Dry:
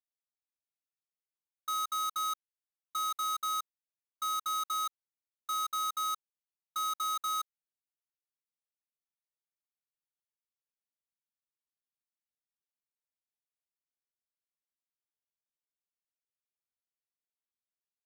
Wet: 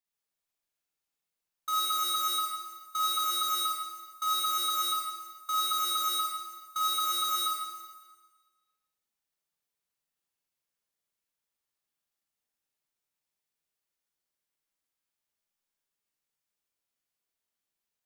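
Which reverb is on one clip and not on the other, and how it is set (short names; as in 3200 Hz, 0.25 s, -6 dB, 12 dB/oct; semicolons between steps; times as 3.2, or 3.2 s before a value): Schroeder reverb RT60 1.4 s, DRR -5 dB; gain +1.5 dB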